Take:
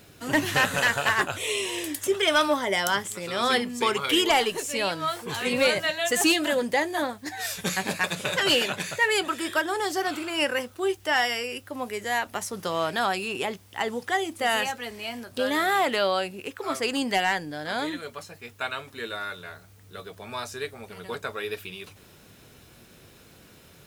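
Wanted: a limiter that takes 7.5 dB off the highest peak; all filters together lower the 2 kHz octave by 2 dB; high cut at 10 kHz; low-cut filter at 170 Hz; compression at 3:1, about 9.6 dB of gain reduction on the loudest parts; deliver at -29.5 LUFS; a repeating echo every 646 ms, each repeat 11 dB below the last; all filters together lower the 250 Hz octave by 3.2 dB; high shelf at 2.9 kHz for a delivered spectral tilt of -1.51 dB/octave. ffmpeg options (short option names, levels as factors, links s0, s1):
-af "highpass=170,lowpass=10000,equalizer=f=250:t=o:g=-3.5,equalizer=f=2000:t=o:g=-4,highshelf=f=2900:g=4,acompressor=threshold=0.0282:ratio=3,alimiter=limit=0.0668:level=0:latency=1,aecho=1:1:646|1292|1938:0.282|0.0789|0.0221,volume=1.78"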